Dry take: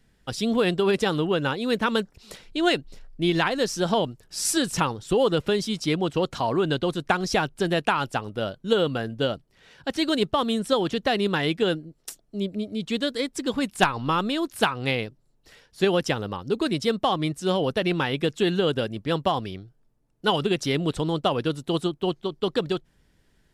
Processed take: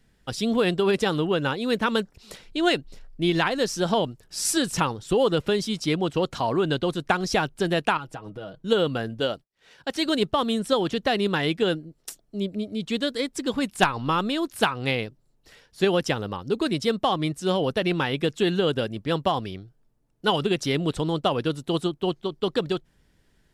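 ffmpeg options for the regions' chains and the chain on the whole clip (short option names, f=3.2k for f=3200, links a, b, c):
-filter_complex "[0:a]asettb=1/sr,asplit=3[a][b][c];[a]atrim=end=7.974[d];[b]atrim=start=7.97:end=8.64,asetpts=PTS-STARTPTS,afade=t=in:d=0.004:c=qsin,afade=t=out:st=0.666:d=0.004:c=qsin,aecho=1:1:6.3:0.69,atrim=end_sample=29547,acompressor=threshold=-35dB:ratio=3:attack=3.2:release=140:knee=1:detection=peak,highshelf=f=2.4k:g=-8[e];[c]atrim=start=8.636[f];[d][e]acrossfade=d=0.004:c1=hsin:c2=qsin[g];[g][f]acrossfade=d=0.004:c1=qsin:c2=hsin,asettb=1/sr,asplit=3[h][i][j];[h]atrim=end=9.204[k];[i]atrim=start=9.2:end=10.06,asetpts=PTS-STARTPTS,afade=t=in:d=0.004:c=qsin,afade=t=out:st=0.856:d=0.004:c=qsin,bass=f=250:g=-7,treble=f=4k:g=2,agate=range=-33dB:threshold=-52dB:ratio=3:release=100:detection=peak[l];[j]atrim=start=10.056[m];[k][l]acrossfade=d=0.004:c1=hsin:c2=qsin[n];[n][m]acrossfade=d=0.004:c1=qsin:c2=hsin"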